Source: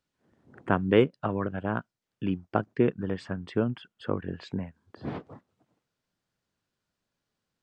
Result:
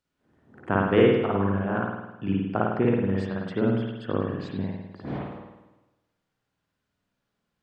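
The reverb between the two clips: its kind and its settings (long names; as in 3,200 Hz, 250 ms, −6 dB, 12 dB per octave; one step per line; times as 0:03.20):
spring reverb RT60 1 s, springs 51 ms, chirp 50 ms, DRR −4.5 dB
level −2 dB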